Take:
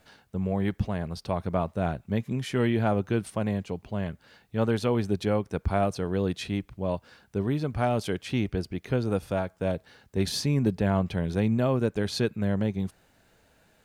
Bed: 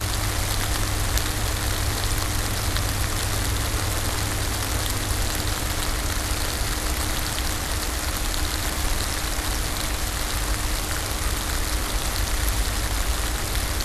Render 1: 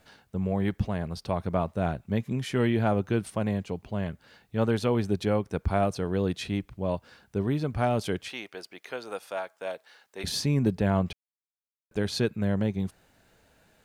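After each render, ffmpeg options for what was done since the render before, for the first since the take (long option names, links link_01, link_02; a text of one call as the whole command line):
ffmpeg -i in.wav -filter_complex "[0:a]asettb=1/sr,asplit=3[link_01][link_02][link_03];[link_01]atrim=end=8.284[link_04];[link_02]atrim=start=8.28:end=10.24,asetpts=PTS-STARTPTS,afade=type=in:duration=0.004:curve=qsin,afade=type=out:start_time=1.956:duration=0.004:curve=qsin,highpass=690[link_05];[link_03]atrim=start=10.236[link_06];[link_04][link_05]acrossfade=duration=0.004:curve1=hsin:curve2=qsin[link_07];[link_07][link_06]acrossfade=duration=0.004:curve1=qsin:curve2=hsin,asplit=3[link_08][link_09][link_10];[link_08]atrim=end=11.13,asetpts=PTS-STARTPTS,afade=type=out:start_time=11.126:duration=0.004:curve=hsin[link_11];[link_09]atrim=start=11.13:end=11.91,asetpts=PTS-STARTPTS,volume=0[link_12];[link_10]atrim=start=11.91,asetpts=PTS-STARTPTS,afade=type=in:duration=0.004:curve=hsin[link_13];[link_11][link_12][link_13]concat=n=3:v=0:a=1" out.wav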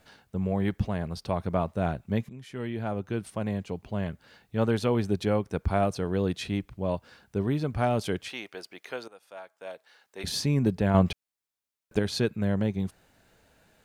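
ffmpeg -i in.wav -filter_complex "[0:a]asettb=1/sr,asplit=3[link_01][link_02][link_03];[link_01]atrim=end=10.944[link_04];[link_02]atrim=start=10.94:end=11.99,asetpts=PTS-STARTPTS,afade=type=in:duration=0.004:curve=qsin,afade=type=out:start_time=1.046:duration=0.004:curve=qsin,acontrast=34[link_05];[link_03]atrim=start=11.986[link_06];[link_04][link_05]acrossfade=duration=0.004:curve1=hsin:curve2=qsin[link_07];[link_07][link_06]acrossfade=duration=0.004:curve1=qsin:curve2=hsin,asplit=3[link_08][link_09][link_10];[link_08]atrim=end=2.29,asetpts=PTS-STARTPTS,afade=type=out:start_time=2.286:duration=0.004:curve=hsin:silence=0.158489[link_11];[link_09]atrim=start=2.29:end=9.08,asetpts=PTS-STARTPTS,afade=type=in:duration=1.66:silence=0.158489,afade=type=out:start_time=6.786:duration=0.004:curve=hsin:silence=0.112202[link_12];[link_10]atrim=start=9.08,asetpts=PTS-STARTPTS,afade=type=in:duration=1.34:silence=0.112202[link_13];[link_11][link_12][link_13]concat=n=3:v=0:a=1" out.wav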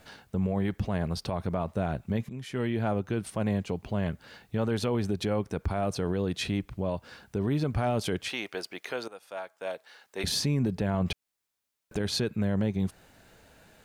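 ffmpeg -i in.wav -filter_complex "[0:a]asplit=2[link_01][link_02];[link_02]acompressor=threshold=-33dB:ratio=6,volume=-1dB[link_03];[link_01][link_03]amix=inputs=2:normalize=0,alimiter=limit=-19.5dB:level=0:latency=1:release=44" out.wav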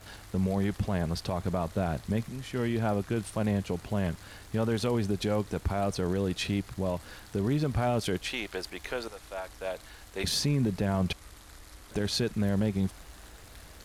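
ffmpeg -i in.wav -i bed.wav -filter_complex "[1:a]volume=-25dB[link_01];[0:a][link_01]amix=inputs=2:normalize=0" out.wav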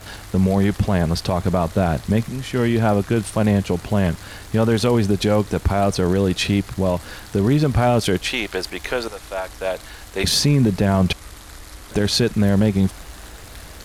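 ffmpeg -i in.wav -af "volume=11dB" out.wav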